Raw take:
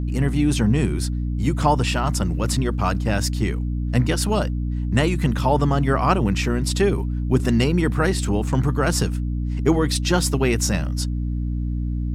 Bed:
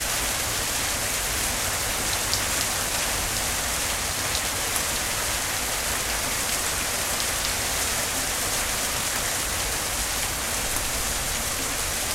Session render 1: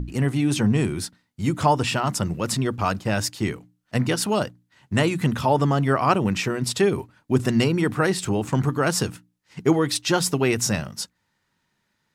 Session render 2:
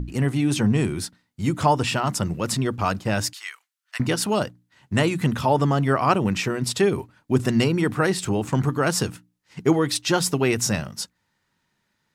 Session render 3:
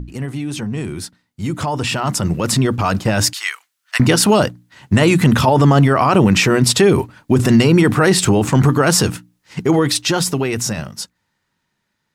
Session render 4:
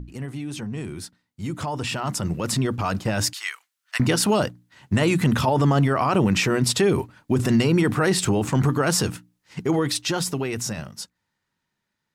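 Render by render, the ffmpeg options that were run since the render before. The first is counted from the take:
-af "bandreject=f=60:t=h:w=6,bandreject=f=120:t=h:w=6,bandreject=f=180:t=h:w=6,bandreject=f=240:t=h:w=6,bandreject=f=300:t=h:w=6"
-filter_complex "[0:a]asettb=1/sr,asplit=3[a][b][c];[a]atrim=end=3.334[d];[b]atrim=start=3.33:end=4,asetpts=PTS-STARTPTS,afade=t=in:d=0.004:c=qsin,afade=t=out:st=0.666:d=0.004:c=qsin,highpass=f=1.2k:w=0.5412,highpass=f=1.2k:w=1.3066[e];[c]atrim=start=3.996[f];[d][e]acrossfade=d=0.004:c1=hsin:c2=qsin[g];[g][f]acrossfade=d=0.004:c1=qsin:c2=hsin"
-af "alimiter=limit=-17dB:level=0:latency=1:release=22,dynaudnorm=f=270:g=17:m=14dB"
-af "volume=-7.5dB"

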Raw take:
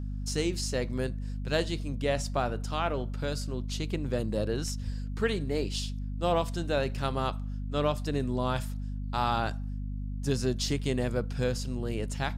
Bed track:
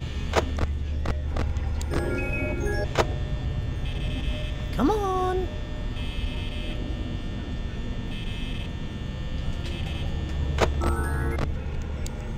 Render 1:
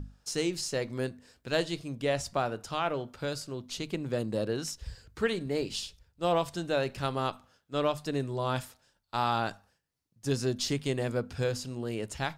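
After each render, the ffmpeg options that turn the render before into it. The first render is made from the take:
-af "bandreject=f=50:t=h:w=6,bandreject=f=100:t=h:w=6,bandreject=f=150:t=h:w=6,bandreject=f=200:t=h:w=6,bandreject=f=250:t=h:w=6"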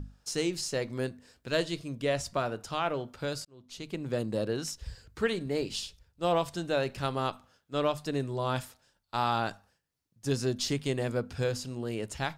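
-filter_complex "[0:a]asettb=1/sr,asplit=3[a][b][c];[a]atrim=end=1.504[d];[b]atrim=start=1.5:end=2.47,asetpts=PTS-STARTPTS,afade=t=in:d=0.004:c=qsin,afade=t=out:st=0.966:d=0.004:c=qsin,asuperstop=centerf=790:order=4:qfactor=6.6[e];[c]atrim=start=2.466[f];[d][e]acrossfade=d=0.004:c1=hsin:c2=qsin[g];[g][f]acrossfade=d=0.004:c1=qsin:c2=hsin,asplit=2[h][i];[h]atrim=end=3.45,asetpts=PTS-STARTPTS,afade=t=out:st=3.446:d=0.004:c=hsin[j];[i]atrim=start=3.45,asetpts=PTS-STARTPTS,afade=t=in:d=0.67[k];[j][k]concat=n=2:v=0:a=1"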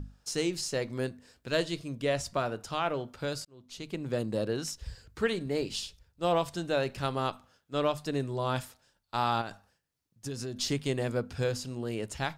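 -filter_complex "[0:a]asettb=1/sr,asplit=3[a][b][c];[a]atrim=end=9.414[d];[b]atrim=start=9.41:end=10.57,asetpts=PTS-STARTPTS,afade=t=in:d=0.004:c=qsin,afade=t=out:st=1.156:d=0.004:c=qsin,acompressor=threshold=-33dB:ratio=6:attack=3.2:release=140:knee=1:detection=peak[e];[c]atrim=start=10.566[f];[d][e]acrossfade=d=0.004:c1=hsin:c2=qsin[g];[g][f]acrossfade=d=0.004:c1=qsin:c2=hsin"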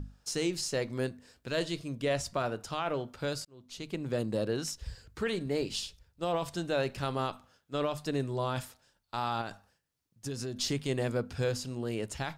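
-af "alimiter=limit=-21.5dB:level=0:latency=1:release=15"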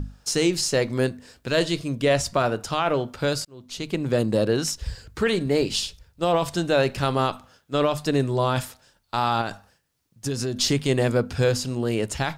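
-af "volume=10dB"

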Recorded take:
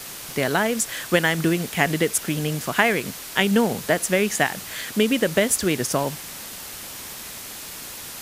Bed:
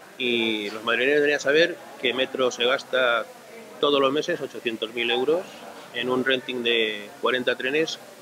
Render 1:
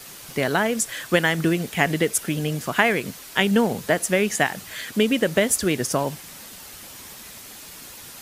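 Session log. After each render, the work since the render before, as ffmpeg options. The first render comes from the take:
-af "afftdn=nr=6:nf=-37"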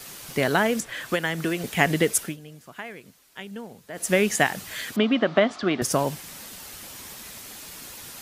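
-filter_complex "[0:a]asettb=1/sr,asplit=3[a][b][c];[a]atrim=end=0.804[d];[b]atrim=start=0.8:end=1.64,asetpts=PTS-STARTPTS,afade=t=in:d=0.004:c=qsin,afade=t=out:st=0.836:d=0.004:c=qsin,acrossover=split=390|3500[e][f][g];[e]acompressor=threshold=-31dB:ratio=4[h];[f]acompressor=threshold=-24dB:ratio=4[i];[g]acompressor=threshold=-39dB:ratio=4[j];[h][i][j]amix=inputs=3:normalize=0[k];[c]atrim=start=1.636[l];[d][k]acrossfade=d=0.004:c1=hsin:c2=qsin[m];[m][l]acrossfade=d=0.004:c1=qsin:c2=hsin,asettb=1/sr,asplit=3[n][o][p];[n]atrim=end=4.964[q];[o]atrim=start=4.96:end=5.82,asetpts=PTS-STARTPTS,afade=t=in:d=0.004:c=qsin,afade=t=out:st=0.856:d=0.004:c=qsin,highpass=210,equalizer=f=240:t=q:w=4:g=3,equalizer=f=480:t=q:w=4:g=-8,equalizer=f=700:t=q:w=4:g=9,equalizer=f=1.2k:t=q:w=4:g=10,equalizer=f=1.8k:t=q:w=4:g=-3,equalizer=f=2.6k:t=q:w=4:g=-4,lowpass=f=3.9k:w=0.5412,lowpass=f=3.9k:w=1.3066[r];[p]atrim=start=5.816[s];[q][r]acrossfade=d=0.004:c1=hsin:c2=qsin[t];[t][s]acrossfade=d=0.004:c1=qsin:c2=hsin,asplit=3[u][v][w];[u]atrim=end=2.37,asetpts=PTS-STARTPTS,afade=t=out:st=2.19:d=0.18:silence=0.11885[x];[v]atrim=start=2.37:end=3.93,asetpts=PTS-STARTPTS,volume=-18.5dB[y];[w]atrim=start=3.93,asetpts=PTS-STARTPTS,afade=t=in:d=0.18:silence=0.11885[z];[x][y][z]concat=n=3:v=0:a=1"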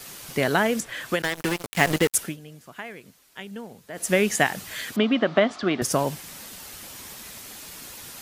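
-filter_complex "[0:a]asettb=1/sr,asplit=3[a][b][c];[a]atrim=end=1.224[d];[b]atrim=start=1.22:end=2.15,asetpts=PTS-STARTPTS,afade=t=in:d=0.004:c=qsin,afade=t=out:st=0.926:d=0.004:c=qsin,acrusher=bits=3:mix=0:aa=0.5[e];[c]atrim=start=2.146[f];[d][e]acrossfade=d=0.004:c1=hsin:c2=qsin[g];[g][f]acrossfade=d=0.004:c1=qsin:c2=hsin"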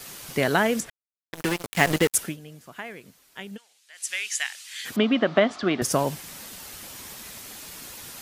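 -filter_complex "[0:a]asplit=3[a][b][c];[a]afade=t=out:st=3.56:d=0.02[d];[b]asuperpass=centerf=4900:order=4:qfactor=0.67,afade=t=in:st=3.56:d=0.02,afade=t=out:st=4.84:d=0.02[e];[c]afade=t=in:st=4.84:d=0.02[f];[d][e][f]amix=inputs=3:normalize=0,asplit=3[g][h][i];[g]atrim=end=0.9,asetpts=PTS-STARTPTS,afade=t=out:st=0.896:d=0.004:c=hsin[j];[h]atrim=start=0.9:end=1.33,asetpts=PTS-STARTPTS,volume=0[k];[i]atrim=start=1.33,asetpts=PTS-STARTPTS,afade=t=in:d=0.004:c=hsin[l];[j][k][l]concat=n=3:v=0:a=1"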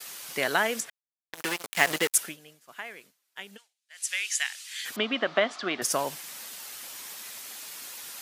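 -af "highpass=f=920:p=1,agate=range=-33dB:threshold=-48dB:ratio=3:detection=peak"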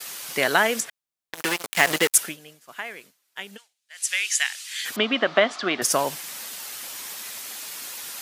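-af "volume=5.5dB,alimiter=limit=-2dB:level=0:latency=1"

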